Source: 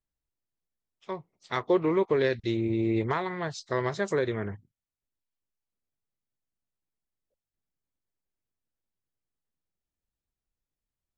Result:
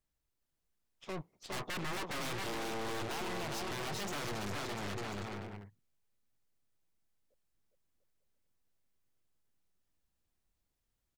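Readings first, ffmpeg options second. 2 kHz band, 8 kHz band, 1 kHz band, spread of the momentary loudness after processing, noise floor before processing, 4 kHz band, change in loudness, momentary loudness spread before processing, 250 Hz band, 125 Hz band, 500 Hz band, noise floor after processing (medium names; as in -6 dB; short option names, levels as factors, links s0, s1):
-5.0 dB, no reading, -6.0 dB, 7 LU, under -85 dBFS, +1.5 dB, -11.0 dB, 15 LU, -13.0 dB, -9.5 dB, -14.5 dB, -84 dBFS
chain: -af "aeval=exprs='0.0335*(abs(mod(val(0)/0.0335+3,4)-2)-1)':c=same,aecho=1:1:410|697|897.9|1039|1137:0.631|0.398|0.251|0.158|0.1,aeval=exprs='(tanh(200*val(0)+0.75)-tanh(0.75))/200':c=same,volume=2.51"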